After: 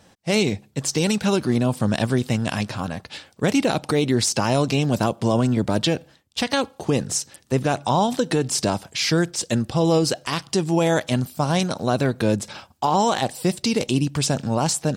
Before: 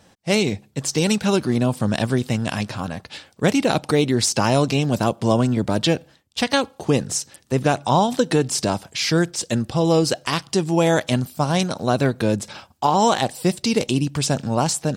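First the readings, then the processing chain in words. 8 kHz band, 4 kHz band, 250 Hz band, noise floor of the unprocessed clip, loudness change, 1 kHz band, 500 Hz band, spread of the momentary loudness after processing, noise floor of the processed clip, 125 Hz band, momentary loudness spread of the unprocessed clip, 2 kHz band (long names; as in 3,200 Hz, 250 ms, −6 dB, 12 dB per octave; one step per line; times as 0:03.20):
−0.5 dB, −1.0 dB, −1.0 dB, −56 dBFS, −1.5 dB, −2.0 dB, −1.5 dB, 6 LU, −56 dBFS, −1.0 dB, 7 LU, −1.5 dB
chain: brickwall limiter −10 dBFS, peak gain reduction 4.5 dB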